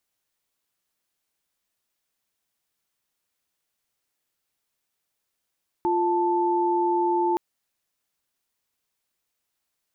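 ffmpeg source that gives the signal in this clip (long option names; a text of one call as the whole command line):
ffmpeg -f lavfi -i "aevalsrc='0.075*(sin(2*PI*349.23*t)+sin(2*PI*880*t))':duration=1.52:sample_rate=44100" out.wav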